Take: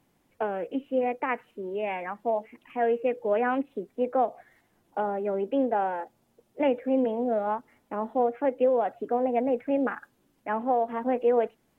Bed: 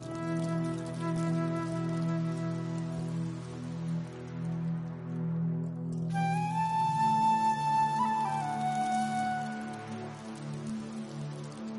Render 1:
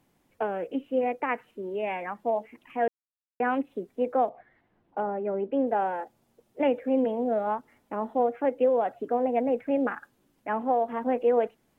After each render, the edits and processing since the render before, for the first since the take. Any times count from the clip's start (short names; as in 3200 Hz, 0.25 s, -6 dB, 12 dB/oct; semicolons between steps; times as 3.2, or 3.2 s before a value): 2.88–3.4 mute; 4.29–5.67 air absorption 350 m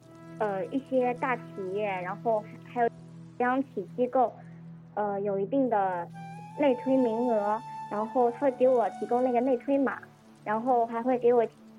add bed -12.5 dB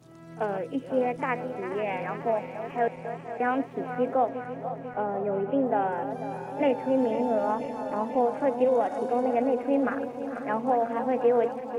regenerating reverse delay 0.247 s, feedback 82%, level -11 dB; pre-echo 36 ms -18 dB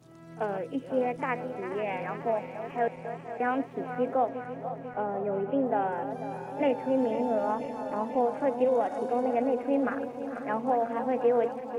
gain -2 dB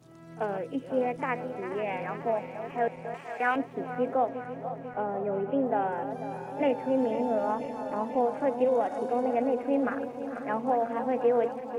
3.14–3.56 tilt shelf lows -8.5 dB, about 660 Hz